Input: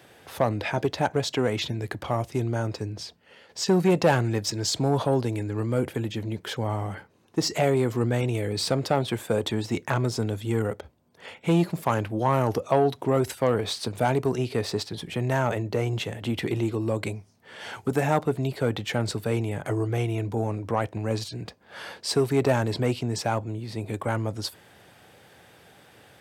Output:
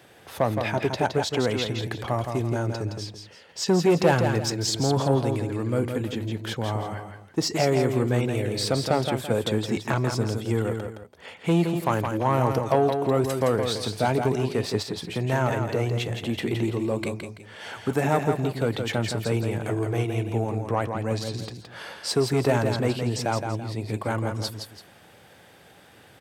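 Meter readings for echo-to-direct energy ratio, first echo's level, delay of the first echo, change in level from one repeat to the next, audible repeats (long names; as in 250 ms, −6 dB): −5.5 dB, −6.0 dB, 167 ms, −9.5 dB, 2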